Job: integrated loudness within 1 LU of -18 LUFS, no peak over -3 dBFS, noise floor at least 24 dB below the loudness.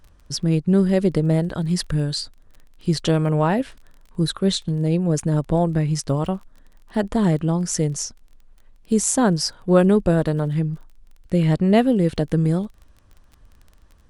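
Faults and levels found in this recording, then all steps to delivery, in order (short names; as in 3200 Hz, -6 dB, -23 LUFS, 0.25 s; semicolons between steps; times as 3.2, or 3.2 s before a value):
ticks 24/s; loudness -21.0 LUFS; peak -3.0 dBFS; loudness target -18.0 LUFS
-> de-click; gain +3 dB; limiter -3 dBFS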